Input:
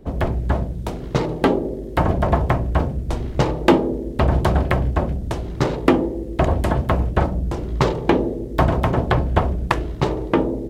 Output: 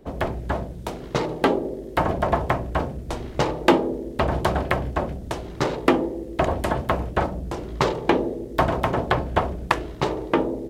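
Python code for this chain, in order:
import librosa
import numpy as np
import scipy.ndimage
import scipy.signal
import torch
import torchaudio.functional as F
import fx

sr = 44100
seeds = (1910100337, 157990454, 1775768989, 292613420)

y = fx.low_shelf(x, sr, hz=240.0, db=-10.0)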